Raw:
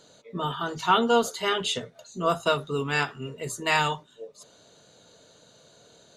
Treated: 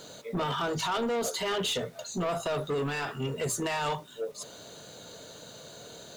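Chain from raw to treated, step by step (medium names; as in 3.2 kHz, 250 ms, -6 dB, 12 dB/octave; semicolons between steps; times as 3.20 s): dynamic bell 580 Hz, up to +7 dB, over -38 dBFS, Q 1.8; in parallel at +2 dB: compression, threshold -35 dBFS, peak gain reduction 20 dB; on the sum: peak limiter -18 dBFS, peak gain reduction 12.5 dB; bit crusher 10-bit; saturation -27 dBFS, distortion -11 dB; trim +1.5 dB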